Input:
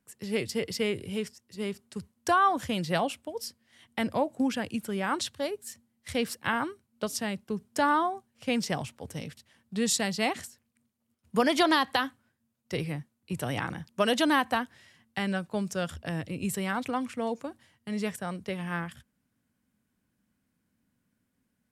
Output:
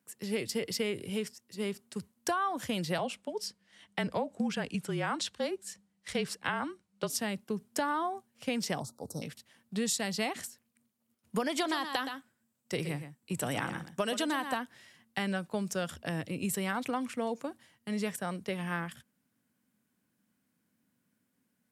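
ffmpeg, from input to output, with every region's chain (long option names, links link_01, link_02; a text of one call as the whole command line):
ffmpeg -i in.wav -filter_complex "[0:a]asettb=1/sr,asplit=3[link_01][link_02][link_03];[link_01]atrim=end=2.984[link_04];[link_02]atrim=start=2.98:end=7.1,asetpts=PTS-STARTPTS,afade=type=in:duration=0.004:curve=qsin,afade=type=out:start_time=4.116:duration=0.004:curve=qsin,lowpass=8100,afreqshift=-34[link_05];[link_03]atrim=start=7.096[link_06];[link_04][link_05]acrossfade=duration=0.004:curve1=hsin:curve2=qsin[link_07];[link_07][link_06]acrossfade=duration=0.004:curve1=qsin:curve2=hsin,asettb=1/sr,asplit=3[link_08][link_09][link_10];[link_08]atrim=end=8.804[link_11];[link_09]atrim=start=8.8:end=9.22,asetpts=PTS-STARTPTS,afade=type=in:duration=0.004:curve=qsin,afade=type=out:start_time=0.416:duration=0.004:curve=qsin,asuperstop=centerf=2300:order=12:qfactor=0.87,equalizer=frequency=1100:width_type=o:width=0.3:gain=-5[link_12];[link_10]atrim=start=9.216[link_13];[link_11][link_12]acrossfade=duration=0.004:curve1=hsin:curve2=qsin[link_14];[link_14][link_13]acrossfade=duration=0.004:curve1=qsin:curve2=hsin,asettb=1/sr,asplit=3[link_15][link_16][link_17];[link_15]atrim=end=11.514[link_18];[link_16]atrim=start=11.51:end=14.57,asetpts=PTS-STARTPTS,afade=type=in:duration=0.004:curve=qsin,afade=type=out:start_time=3.056:duration=0.004:curve=qsin,equalizer=frequency=7800:width=5.4:gain=8.5,aecho=1:1:120:0.282,atrim=end_sample=134946[link_19];[link_17]atrim=start=14.566[link_20];[link_18][link_19]acrossfade=duration=0.004:curve1=hsin:curve2=qsin[link_21];[link_21][link_20]acrossfade=duration=0.004:curve1=qsin:curve2=hsin,highpass=140,highshelf=frequency=9500:gain=4.5,acompressor=threshold=-28dB:ratio=6" out.wav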